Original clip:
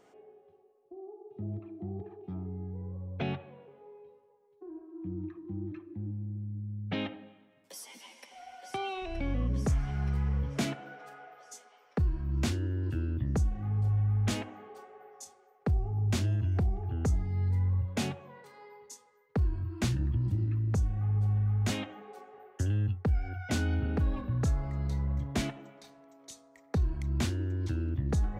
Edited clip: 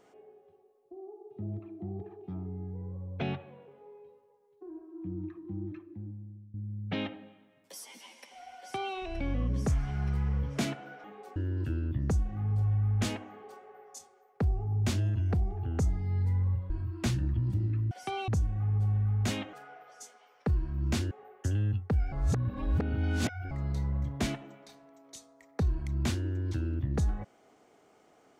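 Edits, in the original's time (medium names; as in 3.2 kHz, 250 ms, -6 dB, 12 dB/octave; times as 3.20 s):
5.65–6.54 s: fade out, to -18 dB
8.58–8.95 s: copy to 20.69 s
11.04–12.62 s: swap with 21.94–22.26 s
17.96–19.48 s: delete
23.27–24.66 s: reverse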